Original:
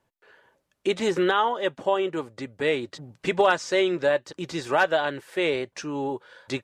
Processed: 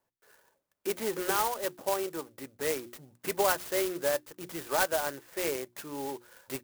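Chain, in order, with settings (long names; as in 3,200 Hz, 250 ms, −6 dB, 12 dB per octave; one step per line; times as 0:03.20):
low-shelf EQ 270 Hz −7.5 dB
mains-hum notches 60/120/180/240/300/360 Hz
converter with an unsteady clock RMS 0.08 ms
level −5.5 dB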